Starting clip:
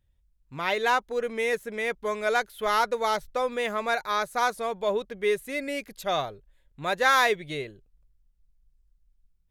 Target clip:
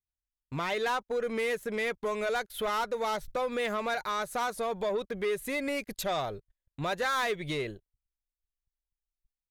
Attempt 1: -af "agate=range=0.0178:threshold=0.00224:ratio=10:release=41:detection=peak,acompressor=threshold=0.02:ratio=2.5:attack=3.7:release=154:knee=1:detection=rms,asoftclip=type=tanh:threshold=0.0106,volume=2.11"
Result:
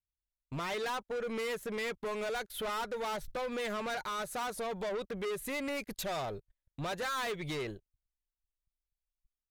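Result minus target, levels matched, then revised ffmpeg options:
saturation: distortion +8 dB
-af "agate=range=0.0178:threshold=0.00224:ratio=10:release=41:detection=peak,acompressor=threshold=0.02:ratio=2.5:attack=3.7:release=154:knee=1:detection=rms,asoftclip=type=tanh:threshold=0.0299,volume=2.11"

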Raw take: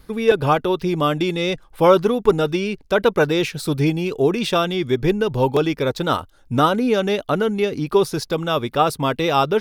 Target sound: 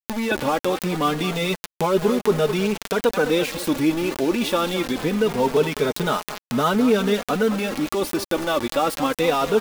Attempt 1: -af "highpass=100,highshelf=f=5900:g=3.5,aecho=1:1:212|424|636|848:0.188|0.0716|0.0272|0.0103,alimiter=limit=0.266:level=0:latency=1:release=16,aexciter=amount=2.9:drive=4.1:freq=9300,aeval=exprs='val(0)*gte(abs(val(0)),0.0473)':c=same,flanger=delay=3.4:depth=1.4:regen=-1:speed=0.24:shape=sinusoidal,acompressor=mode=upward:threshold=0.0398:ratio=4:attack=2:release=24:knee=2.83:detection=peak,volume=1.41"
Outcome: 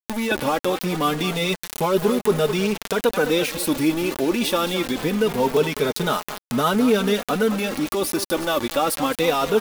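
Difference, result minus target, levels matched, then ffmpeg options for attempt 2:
8 kHz band +3.0 dB
-af "highpass=100,highshelf=f=5900:g=-6.5,aecho=1:1:212|424|636|848:0.188|0.0716|0.0272|0.0103,alimiter=limit=0.266:level=0:latency=1:release=16,aexciter=amount=2.9:drive=4.1:freq=9300,aeval=exprs='val(0)*gte(abs(val(0)),0.0473)':c=same,flanger=delay=3.4:depth=1.4:regen=-1:speed=0.24:shape=sinusoidal,acompressor=mode=upward:threshold=0.0398:ratio=4:attack=2:release=24:knee=2.83:detection=peak,volume=1.41"

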